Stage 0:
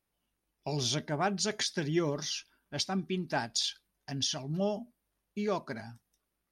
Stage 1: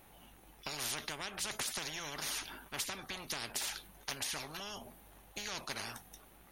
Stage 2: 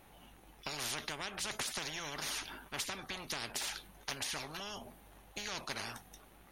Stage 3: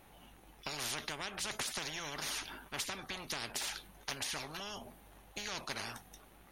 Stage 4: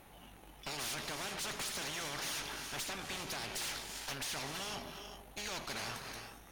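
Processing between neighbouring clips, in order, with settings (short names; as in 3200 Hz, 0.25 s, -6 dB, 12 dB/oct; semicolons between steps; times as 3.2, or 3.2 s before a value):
thirty-one-band EQ 800 Hz +8 dB, 5000 Hz -10 dB, 8000 Hz -5 dB; compressor, threshold -34 dBFS, peak gain reduction 13 dB; spectral compressor 10:1; gain +1 dB
high shelf 9900 Hz -7.5 dB; gain +1 dB
nothing audible
non-linear reverb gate 0.43 s rising, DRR 7 dB; tube stage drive 42 dB, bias 0.7; attack slew limiter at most 460 dB/s; gain +6 dB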